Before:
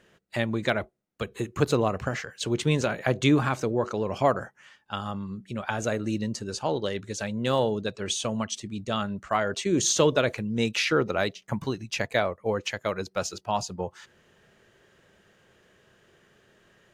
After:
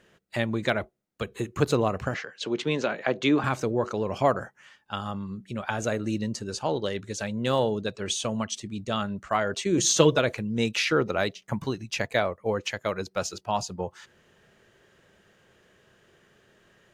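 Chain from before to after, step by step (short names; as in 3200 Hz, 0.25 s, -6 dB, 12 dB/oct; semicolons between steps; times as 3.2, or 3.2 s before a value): 2.14–3.44 three-band isolator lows -23 dB, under 180 Hz, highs -22 dB, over 5900 Hz; 9.77–10.19 comb 6.1 ms, depth 65%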